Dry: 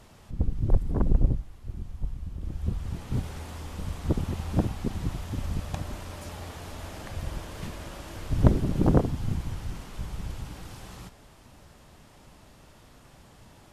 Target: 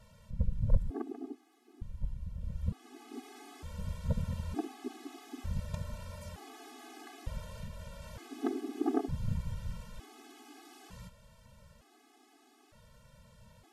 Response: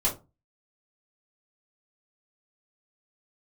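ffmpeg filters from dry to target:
-filter_complex "[0:a]asettb=1/sr,asplit=3[a][b][c];[a]atrim=end=7.564[d];[b]atrim=start=7.56:end=8.02,asetpts=PTS-STARTPTS,afade=t=in:d=0.004:c=qsin,afade=t=out:st=0.456:d=0.004:c=qsin,acrossover=split=130[e][f];[f]acompressor=threshold=-40dB:ratio=6[g];[e][g]amix=inputs=2:normalize=0[h];[c]atrim=start=8.016[i];[d][h]acrossfade=d=0.004:c1=hsin:c2=qsin[j];[j][i]acrossfade=d=0.004:c1=qsin:c2=hsin,afftfilt=real='re*gt(sin(2*PI*0.55*pts/sr)*(1-2*mod(floor(b*sr/1024/220),2)),0)':imag='im*gt(sin(2*PI*0.55*pts/sr)*(1-2*mod(floor(b*sr/1024/220),2)),0)':win_size=1024:overlap=0.75,volume=-4.5dB"

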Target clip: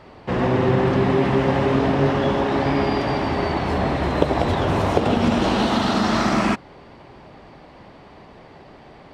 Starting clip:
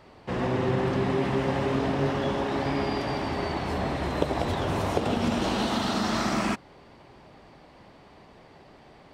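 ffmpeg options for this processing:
-af "lowpass=f=4k:p=1,volume=7.5dB"

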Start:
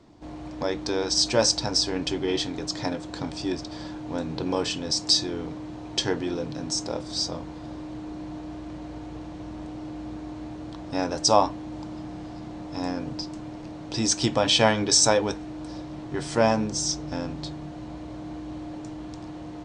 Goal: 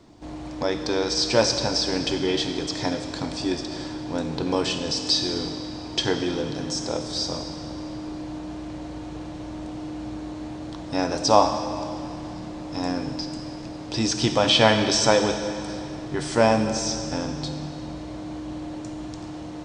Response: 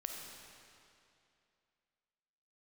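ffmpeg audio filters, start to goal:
-filter_complex "[0:a]acrossover=split=4400[a][b];[b]acompressor=threshold=-39dB:ratio=4:attack=1:release=60[c];[a][c]amix=inputs=2:normalize=0,asplit=2[d][e];[e]highshelf=f=3.5k:g=8.5[f];[1:a]atrim=start_sample=2205[g];[f][g]afir=irnorm=-1:irlink=0,volume=1.5dB[h];[d][h]amix=inputs=2:normalize=0,volume=-3dB"

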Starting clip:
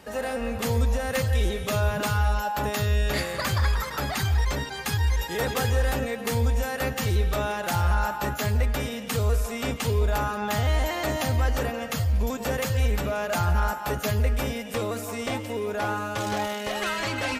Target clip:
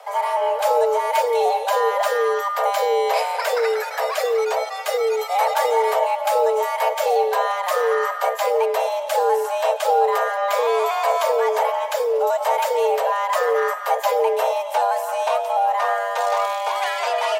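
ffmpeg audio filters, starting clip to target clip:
-af "equalizer=f=310:w=0.73:g=13.5,afreqshift=380"

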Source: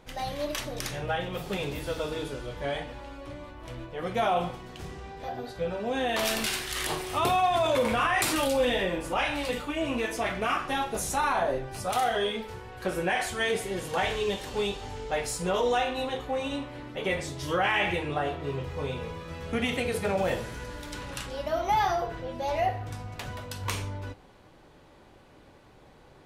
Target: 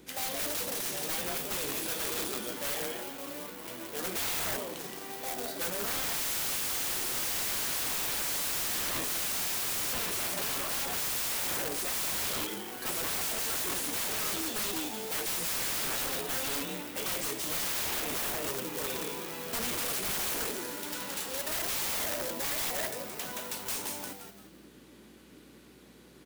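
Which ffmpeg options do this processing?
-filter_complex "[0:a]acrossover=split=410|1100|4900[a][b][c][d];[a]acompressor=mode=upward:threshold=-41dB:ratio=2.5[e];[b]acrusher=bits=7:mix=0:aa=0.000001[f];[c]alimiter=level_in=5.5dB:limit=-24dB:level=0:latency=1:release=487,volume=-5.5dB[g];[e][f][g][d]amix=inputs=4:normalize=0,asplit=5[h][i][j][k][l];[i]adelay=172,afreqshift=-100,volume=-5.5dB[m];[j]adelay=344,afreqshift=-200,volume=-14.6dB[n];[k]adelay=516,afreqshift=-300,volume=-23.7dB[o];[l]adelay=688,afreqshift=-400,volume=-32.9dB[p];[h][m][n][o][p]amix=inputs=5:normalize=0,acontrast=21,highpass=f=190:w=0.5412,highpass=f=190:w=1.3066,aemphasis=mode=production:type=50fm,aeval=exprs='val(0)+0.00112*(sin(2*PI*60*n/s)+sin(2*PI*2*60*n/s)/2+sin(2*PI*3*60*n/s)/3+sin(2*PI*4*60*n/s)/4+sin(2*PI*5*60*n/s)/5)':c=same,asettb=1/sr,asplit=3[q][r][s];[q]atrim=end=9.084[t];[r]atrim=start=9.08:end=9.93,asetpts=PTS-STARTPTS,afade=t=in:d=0.004:c=qsin,afade=t=out:st=0.846:d=0.004:c=qsin,bass=f=250:g=7,treble=f=4k:g=10[u];[s]atrim=start=9.926[v];[t][u]acrossfade=d=0.004:c1=hsin:c2=qsin[w];[w][v]acrossfade=d=0.004:c1=qsin:c2=hsin,aeval=exprs='(mod(11.9*val(0)+1,2)-1)/11.9':c=same,volume=-6dB"

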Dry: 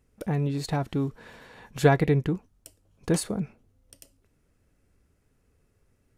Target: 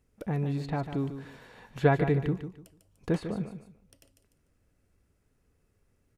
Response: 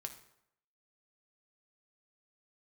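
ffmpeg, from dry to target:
-filter_complex "[0:a]aecho=1:1:148|296|444:0.316|0.0822|0.0214,acrossover=split=3500[a][b];[b]acompressor=threshold=-55dB:ratio=10[c];[a][c]amix=inputs=2:normalize=0,volume=-3.5dB"

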